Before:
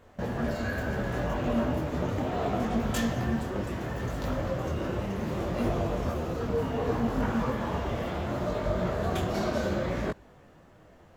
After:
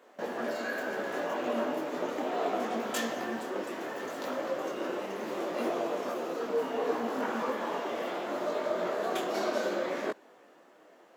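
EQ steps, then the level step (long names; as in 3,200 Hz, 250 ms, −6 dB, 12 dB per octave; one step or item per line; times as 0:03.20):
high-pass filter 290 Hz 24 dB per octave
0.0 dB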